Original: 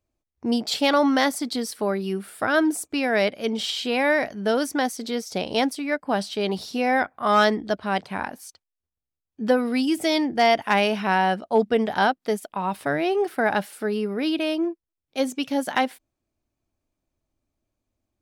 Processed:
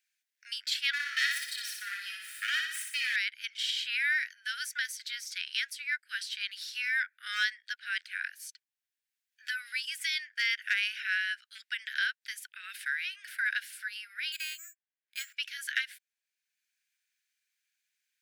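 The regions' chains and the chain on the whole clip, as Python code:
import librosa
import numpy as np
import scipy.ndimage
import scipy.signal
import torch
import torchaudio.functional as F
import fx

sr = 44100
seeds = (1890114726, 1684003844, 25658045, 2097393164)

y = fx.chain(x, sr, fx.lower_of_two(delay_ms=1.6),
    fx.echo_feedback(ms=60, feedback_pct=51, wet_db=-4), at=(0.93, 3.16))
y = fx.chain(y, sr, fx.air_absorb(metres=200.0),
    fx.resample_bad(factor=6, down='none', up='hold'), at=(14.32, 15.37))
y = scipy.signal.sosfilt(scipy.signal.butter(16, 1500.0, 'highpass', fs=sr, output='sos'), y)
y = fx.high_shelf(y, sr, hz=2300.0, db=-7.5)
y = fx.band_squash(y, sr, depth_pct=40)
y = y * librosa.db_to_amplitude(1.5)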